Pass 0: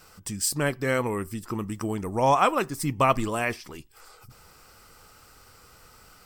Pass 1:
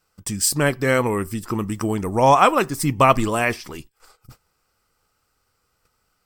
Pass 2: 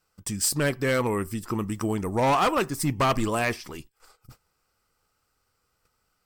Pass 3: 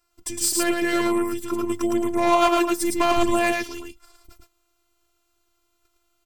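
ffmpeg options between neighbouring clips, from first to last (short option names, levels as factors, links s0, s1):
-af "agate=range=0.0708:threshold=0.00398:ratio=16:detection=peak,volume=2.11"
-af "volume=5.01,asoftclip=hard,volume=0.2,volume=0.631"
-af "afftfilt=real='hypot(re,im)*cos(PI*b)':imag='0':win_size=512:overlap=0.75,aecho=1:1:110:0.708,volume=1.88"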